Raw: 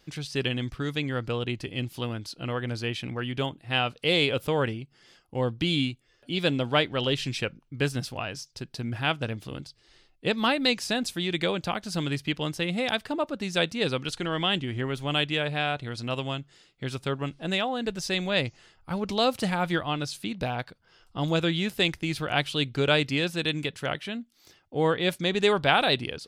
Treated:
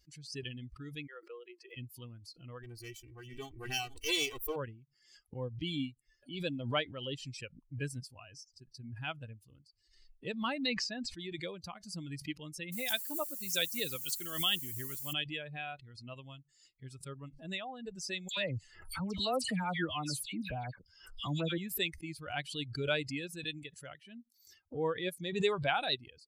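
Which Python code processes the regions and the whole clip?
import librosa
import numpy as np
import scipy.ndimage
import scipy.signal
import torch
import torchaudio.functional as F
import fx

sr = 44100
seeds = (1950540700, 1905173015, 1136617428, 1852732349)

y = fx.chain(x, sr, fx.cheby_ripple_highpass(hz=340.0, ripple_db=3),
    fx.air_absorb(metres=70.0),
    fx.quant_dither(seeds[0], bits=12, dither='none'), at=(1.07, 1.77))
y = fx.chain(y, sr, fx.lower_of_two(delay_ms=2.6),
    fx.high_shelf(hz=11000.0, db=11.5),
    fx.echo_single(ms=444, db=-13.0), at=(2.63, 4.56))
y = fx.chain(y, sr, fx.lowpass(hz=3500.0, slope=12),
    fx.sustainer(db_per_s=54.0), at=(10.66, 11.19))
y = fx.chain(y, sr, fx.high_shelf(hz=2500.0, db=6.0),
    fx.notch(hz=970.0, q=26.0),
    fx.quant_dither(seeds[1], bits=6, dither='triangular'), at=(12.72, 15.13))
y = fx.chain(y, sr, fx.dispersion(late='lows', ms=91.0, hz=2200.0),
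    fx.env_flatten(amount_pct=50), at=(18.28, 21.58))
y = fx.bin_expand(y, sr, power=2.0)
y = fx.high_shelf(y, sr, hz=4800.0, db=7.5)
y = fx.pre_swell(y, sr, db_per_s=84.0)
y = y * 10.0 ** (-6.5 / 20.0)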